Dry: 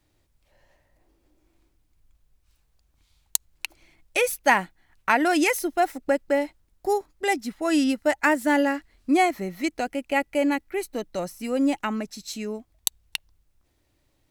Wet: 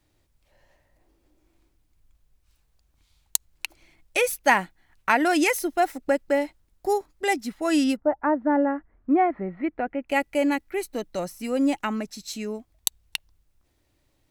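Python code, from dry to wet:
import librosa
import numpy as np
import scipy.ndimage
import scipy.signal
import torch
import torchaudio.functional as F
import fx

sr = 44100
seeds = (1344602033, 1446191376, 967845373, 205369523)

y = fx.lowpass(x, sr, hz=fx.line((7.95, 1100.0), (10.08, 2200.0)), slope=24, at=(7.95, 10.08), fade=0.02)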